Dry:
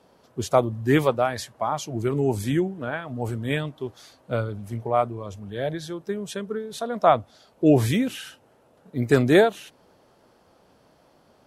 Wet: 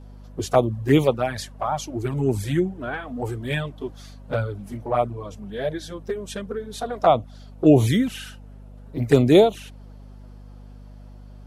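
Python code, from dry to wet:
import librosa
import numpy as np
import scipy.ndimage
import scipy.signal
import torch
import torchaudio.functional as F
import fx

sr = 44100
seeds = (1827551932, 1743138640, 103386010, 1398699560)

y = fx.env_flanger(x, sr, rest_ms=8.5, full_db=-15.5)
y = fx.add_hum(y, sr, base_hz=50, snr_db=19)
y = y * 10.0 ** (3.5 / 20.0)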